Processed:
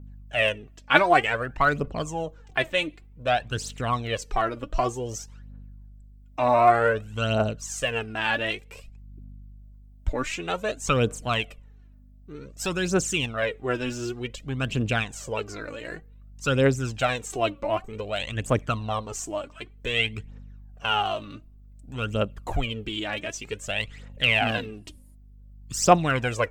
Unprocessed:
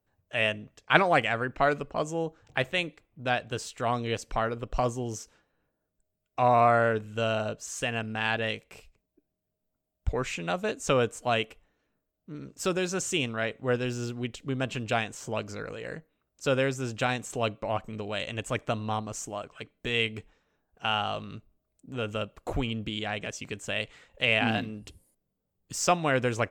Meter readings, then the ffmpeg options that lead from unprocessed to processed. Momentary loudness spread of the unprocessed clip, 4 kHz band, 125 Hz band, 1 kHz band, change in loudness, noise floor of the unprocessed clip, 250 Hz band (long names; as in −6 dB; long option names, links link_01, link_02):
13 LU, +3.5 dB, +4.0 dB, +3.5 dB, +3.5 dB, −82 dBFS, +2.5 dB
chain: -af "aeval=exprs='val(0)+0.00282*(sin(2*PI*50*n/s)+sin(2*PI*2*50*n/s)/2+sin(2*PI*3*50*n/s)/3+sin(2*PI*4*50*n/s)/4+sin(2*PI*5*50*n/s)/5)':channel_layout=same,aphaser=in_gain=1:out_gain=1:delay=3.6:decay=0.64:speed=0.54:type=triangular,volume=1dB"